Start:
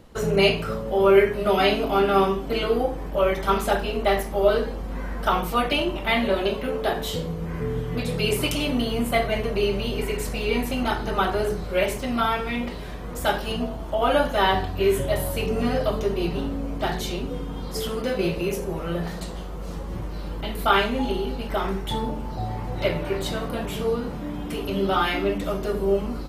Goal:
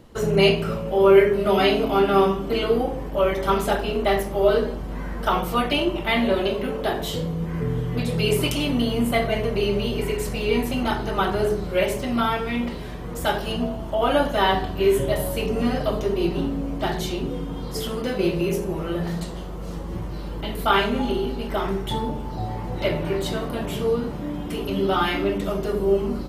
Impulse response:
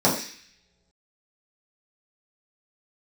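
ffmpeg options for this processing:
-filter_complex "[0:a]asplit=2[a][b];[1:a]atrim=start_sample=2205,asetrate=27342,aresample=44100,lowpass=f=2.8k:w=0.5412,lowpass=f=2.8k:w=1.3066[c];[b][c]afir=irnorm=-1:irlink=0,volume=-31dB[d];[a][d]amix=inputs=2:normalize=0"

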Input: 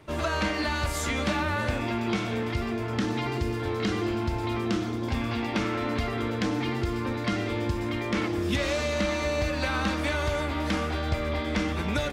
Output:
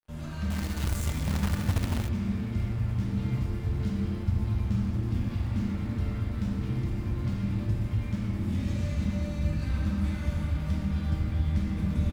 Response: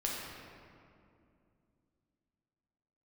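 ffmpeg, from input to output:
-filter_complex "[0:a]firequalizer=gain_entry='entry(200,0);entry(300,-16);entry(560,-19);entry(3700,-27)':delay=0.05:min_phase=1,acrossover=split=280[a][b];[b]alimiter=level_in=18.5dB:limit=-24dB:level=0:latency=1:release=198,volume=-18.5dB[c];[a][c]amix=inputs=2:normalize=0,asplit=2[d][e];[e]adelay=289,lowpass=f=2k:p=1,volume=-13dB,asplit=2[f][g];[g]adelay=289,lowpass=f=2k:p=1,volume=0.51,asplit=2[h][i];[i]adelay=289,lowpass=f=2k:p=1,volume=0.51,asplit=2[j][k];[k]adelay=289,lowpass=f=2k:p=1,volume=0.51,asplit=2[l][m];[m]adelay=289,lowpass=f=2k:p=1,volume=0.51[n];[d][f][h][j][l][n]amix=inputs=6:normalize=0,aeval=exprs='sgn(val(0))*max(abs(val(0))-0.00316,0)':c=same,crystalizer=i=6.5:c=0[o];[1:a]atrim=start_sample=2205[p];[o][p]afir=irnorm=-1:irlink=0,asettb=1/sr,asplit=3[q][r][s];[q]atrim=end=0.504[t];[r]atrim=start=0.5:end=2.09,asetpts=PTS-STARTPTS,afade=t=in:d=0.004:c=qsin,afade=t=out:st=1.586:d=0.004:c=qsin,acrusher=bits=2:mode=log:mix=0:aa=0.000001[u];[s]atrim=start=2.086[v];[t][u]acrossfade=d=0.004:c1=hsin:c2=qsin[w];[w][v]acrossfade=d=0.004:c1=qsin:c2=hsin"

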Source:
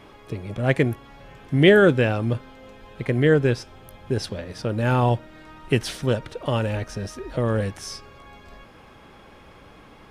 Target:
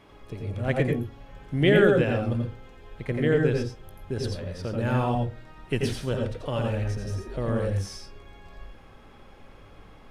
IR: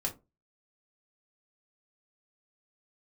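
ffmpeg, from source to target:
-filter_complex "[0:a]asplit=2[a][b];[b]equalizer=f=430:t=o:w=0.77:g=2.5[c];[1:a]atrim=start_sample=2205,lowshelf=f=85:g=11.5,adelay=85[d];[c][d]afir=irnorm=-1:irlink=0,volume=-5.5dB[e];[a][e]amix=inputs=2:normalize=0,volume=-7dB"

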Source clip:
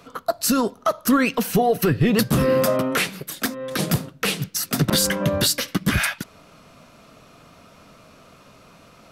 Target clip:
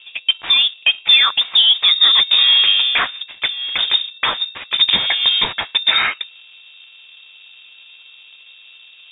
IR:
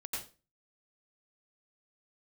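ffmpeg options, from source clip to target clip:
-af "bandreject=f=60:t=h:w=6,bandreject=f=120:t=h:w=6,bandreject=f=180:t=h:w=6,aeval=exprs='val(0)+0.00501*sin(2*PI*1100*n/s)':c=same,adynamicsmooth=sensitivity=5.5:basefreq=600,lowpass=f=3.2k:t=q:w=0.5098,lowpass=f=3.2k:t=q:w=0.6013,lowpass=f=3.2k:t=q:w=0.9,lowpass=f=3.2k:t=q:w=2.563,afreqshift=-3800,volume=6dB"

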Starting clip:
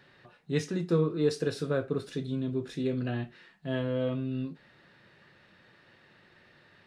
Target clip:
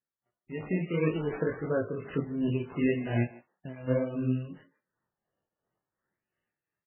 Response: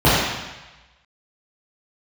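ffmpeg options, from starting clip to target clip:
-filter_complex "[0:a]agate=range=-30dB:threshold=-49dB:ratio=16:detection=peak,asplit=3[a][b][c];[a]afade=t=out:st=3.23:d=0.02[d];[b]acompressor=threshold=-38dB:ratio=20,afade=t=in:st=3.23:d=0.02,afade=t=out:st=3.87:d=0.02[e];[c]afade=t=in:st=3.87:d=0.02[f];[d][e][f]amix=inputs=3:normalize=0,alimiter=limit=-21.5dB:level=0:latency=1:release=125,dynaudnorm=f=220:g=5:m=13dB,asettb=1/sr,asplit=3[g][h][i];[g]atrim=end=1.044[j];[h]atrim=start=1.04:end=1.72,asetpts=PTS-STARTPTS,afade=t=in:d=0.004:c=qsin,afade=t=out:st=0.676:d=0.004:c=qsin,acrusher=bits=3:mode=log:mix=0:aa=0.000001[k];[i]atrim=start=1.716[l];[j][k]acrossfade=d=0.004:c1=hsin:c2=qsin[m];[m][l]acrossfade=d=0.004:c1=qsin:c2=hsin,flanger=delay=18:depth=7:speed=1.7,acrusher=samples=13:mix=1:aa=0.000001:lfo=1:lforange=13:lforate=0.41,tremolo=f=2.8:d=0.58,aresample=8000,aresample=44100,asplit=2[n][o];[o]adelay=150,highpass=300,lowpass=3.4k,asoftclip=type=hard:threshold=-19.5dB,volume=-17dB[p];[n][p]amix=inputs=2:normalize=0,volume=-4.5dB" -ar 12000 -c:a libmp3lame -b:a 8k

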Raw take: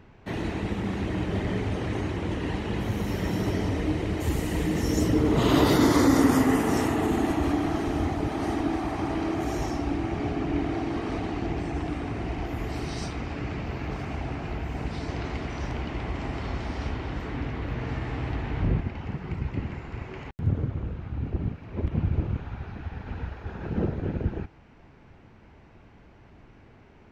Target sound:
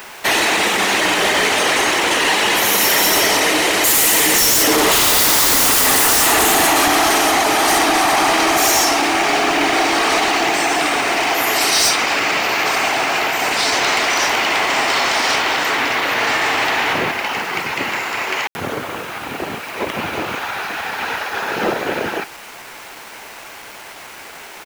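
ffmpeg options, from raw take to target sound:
-filter_complex "[0:a]highpass=730,aemphasis=mode=production:type=75kf,atempo=1.1,asplit=2[a][b];[b]aeval=exprs='0.282*sin(PI/2*8.91*val(0)/0.282)':c=same,volume=-6dB[c];[a][c]amix=inputs=2:normalize=0,acrusher=bits=6:mix=0:aa=0.000001,volume=5dB"

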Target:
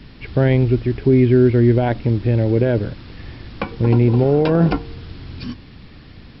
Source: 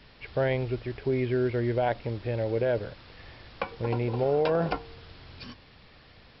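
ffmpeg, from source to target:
-af "acontrast=74,lowshelf=f=400:t=q:w=1.5:g=8.5"

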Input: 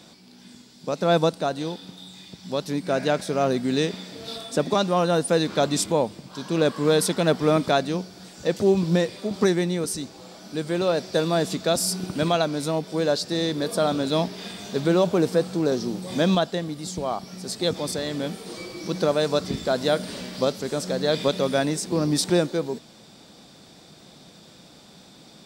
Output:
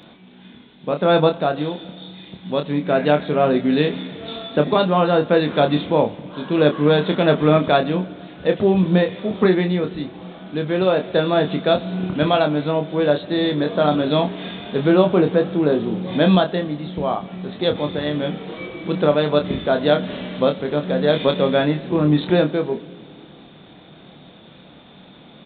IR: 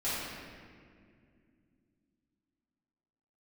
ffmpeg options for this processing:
-filter_complex "[0:a]asplit=2[a][b];[1:a]atrim=start_sample=2205[c];[b][c]afir=irnorm=-1:irlink=0,volume=-25.5dB[d];[a][d]amix=inputs=2:normalize=0,aresample=8000,aresample=44100,asplit=2[e][f];[f]adelay=27,volume=-6dB[g];[e][g]amix=inputs=2:normalize=0,volume=4dB"

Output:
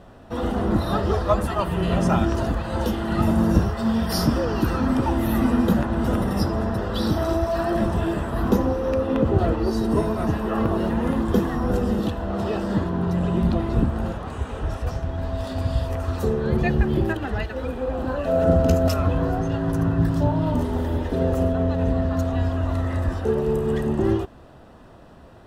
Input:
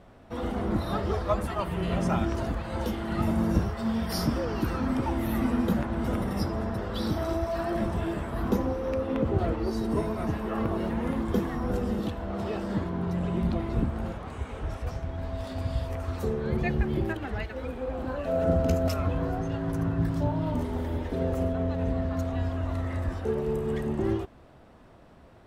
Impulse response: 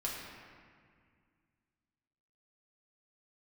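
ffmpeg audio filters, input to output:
-af "bandreject=f=2.2k:w=6.5,volume=6.5dB"

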